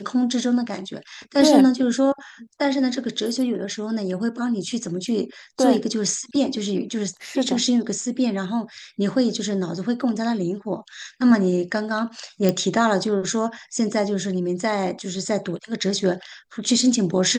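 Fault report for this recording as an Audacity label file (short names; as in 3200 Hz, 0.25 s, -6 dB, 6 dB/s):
12.490000	12.490000	pop -7 dBFS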